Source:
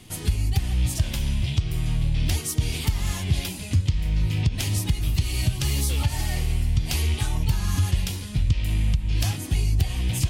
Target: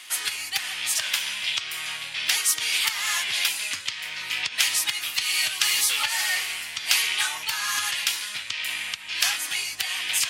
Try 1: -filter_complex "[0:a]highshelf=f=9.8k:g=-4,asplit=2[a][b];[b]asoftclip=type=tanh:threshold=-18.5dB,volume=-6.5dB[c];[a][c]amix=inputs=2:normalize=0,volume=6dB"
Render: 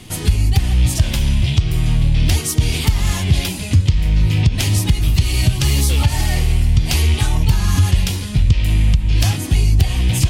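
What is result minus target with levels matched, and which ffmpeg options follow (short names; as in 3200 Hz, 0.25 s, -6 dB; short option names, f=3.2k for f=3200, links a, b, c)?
2000 Hz band -10.5 dB
-filter_complex "[0:a]highpass=f=1.5k:t=q:w=1.5,highshelf=f=9.8k:g=-4,asplit=2[a][b];[b]asoftclip=type=tanh:threshold=-18.5dB,volume=-6.5dB[c];[a][c]amix=inputs=2:normalize=0,volume=6dB"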